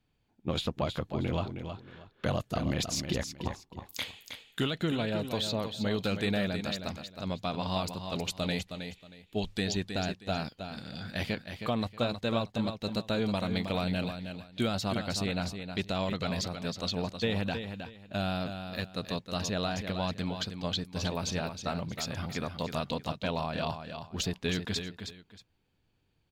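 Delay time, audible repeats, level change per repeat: 316 ms, 2, −12.5 dB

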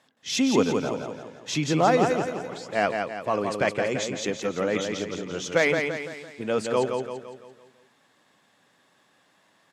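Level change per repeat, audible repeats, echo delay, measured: −6.5 dB, 5, 169 ms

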